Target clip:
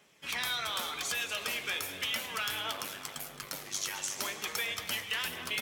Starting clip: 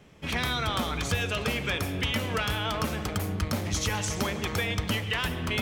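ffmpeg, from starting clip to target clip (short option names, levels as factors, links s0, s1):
-filter_complex "[0:a]asettb=1/sr,asplit=3[s0][s1][s2];[s0]atrim=end=2.714[s3];[s1]atrim=start=2.71:end=4.19,asetpts=PTS-STARTPTS,afade=t=in:d=0.004:c=qsin,afade=t=out:st=1.476:d=0.004:c=qsin,aeval=exprs='val(0)*sin(2*PI*49*n/s)':c=same[s4];[s2]atrim=start=4.186[s5];[s3][s4]acrossfade=d=0.004:c1=hsin:c2=qsin[s6];[s6][s5]acrossfade=d=0.004:c1=qsin:c2=hsin,highpass=f=1100:p=1,asplit=2[s7][s8];[s8]aecho=0:1:217|434|651|868|1085|1302:0.211|0.118|0.0663|0.0371|0.0208|0.0116[s9];[s7][s9]amix=inputs=2:normalize=0,aphaser=in_gain=1:out_gain=1:delay=3.5:decay=0.24:speed=0.37:type=triangular,highshelf=f=5800:g=8,flanger=delay=4.8:depth=9.6:regen=-60:speed=0.88:shape=sinusoidal"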